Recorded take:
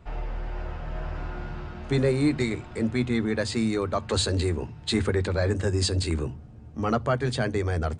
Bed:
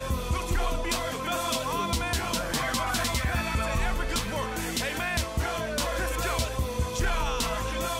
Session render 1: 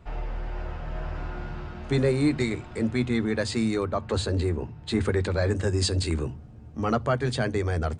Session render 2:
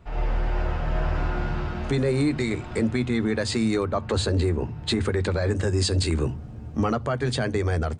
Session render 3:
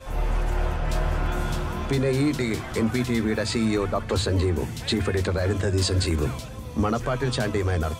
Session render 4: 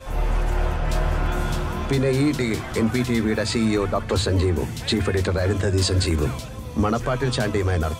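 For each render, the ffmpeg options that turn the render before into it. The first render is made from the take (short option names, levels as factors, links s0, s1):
-filter_complex "[0:a]asettb=1/sr,asplit=3[s0][s1][s2];[s0]atrim=end=3.854[s3];[s1]atrim=start=3.85:end=5.01,asetpts=PTS-STARTPTS,afade=t=in:d=0.004:c=qsin,afade=t=out:st=1.156:d=0.004:c=qsin,highshelf=f=2400:g=-9[s4];[s2]atrim=start=5.006[s5];[s3][s4]acrossfade=d=0.004:c1=hsin:c2=qsin[s6];[s6][s5]acrossfade=d=0.004:c1=qsin:c2=hsin"
-af "alimiter=limit=0.075:level=0:latency=1:release=268,dynaudnorm=f=110:g=3:m=2.51"
-filter_complex "[1:a]volume=0.335[s0];[0:a][s0]amix=inputs=2:normalize=0"
-af "volume=1.33"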